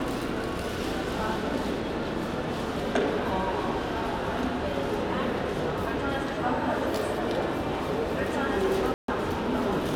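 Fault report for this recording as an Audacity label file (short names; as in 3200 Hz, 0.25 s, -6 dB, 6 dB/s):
8.940000	9.080000	gap 0.143 s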